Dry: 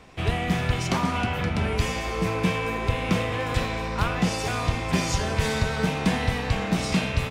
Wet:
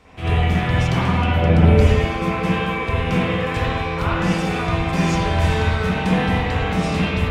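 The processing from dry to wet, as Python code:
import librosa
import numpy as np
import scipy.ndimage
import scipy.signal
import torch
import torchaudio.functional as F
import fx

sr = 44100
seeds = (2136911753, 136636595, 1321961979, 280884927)

y = fx.low_shelf_res(x, sr, hz=780.0, db=6.5, q=1.5, at=(1.31, 1.81))
y = fx.rev_spring(y, sr, rt60_s=1.1, pass_ms=(48, 60), chirp_ms=60, drr_db=-8.0)
y = y * 10.0 ** (-3.5 / 20.0)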